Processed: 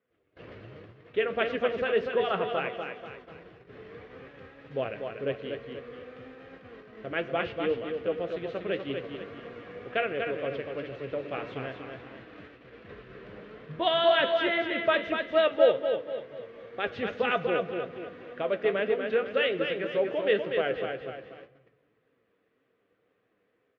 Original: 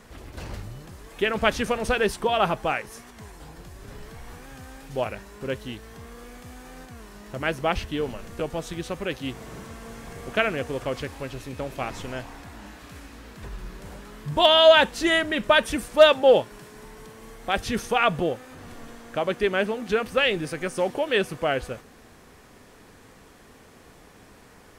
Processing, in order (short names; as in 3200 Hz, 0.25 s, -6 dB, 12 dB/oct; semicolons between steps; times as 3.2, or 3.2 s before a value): speaker cabinet 140–3000 Hz, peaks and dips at 220 Hz -4 dB, 450 Hz +8 dB, 850 Hz -10 dB; speed mistake 24 fps film run at 25 fps; AGC gain up to 7 dB; feedback echo 0.242 s, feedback 41%, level -5.5 dB; gate -37 dBFS, range -19 dB; on a send at -15 dB: reverb RT60 1.3 s, pre-delay 3 ms; on the sum: flange 1.9 Hz, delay 7.1 ms, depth 3.5 ms, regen +61%; gain -6.5 dB